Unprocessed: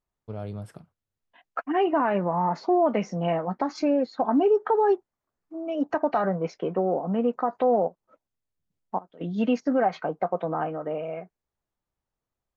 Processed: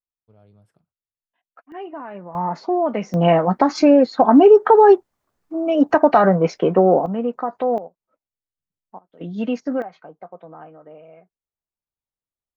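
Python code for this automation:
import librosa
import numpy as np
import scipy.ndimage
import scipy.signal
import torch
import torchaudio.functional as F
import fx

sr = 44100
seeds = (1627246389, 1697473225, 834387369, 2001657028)

y = fx.gain(x, sr, db=fx.steps((0.0, -18.0), (1.72, -10.5), (2.35, 1.5), (3.14, 11.0), (7.06, 1.5), (7.78, -10.5), (9.13, 0.5), (9.82, -12.0)))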